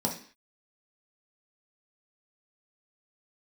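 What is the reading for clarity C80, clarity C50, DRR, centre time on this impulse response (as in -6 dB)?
14.0 dB, 8.5 dB, -1.5 dB, 20 ms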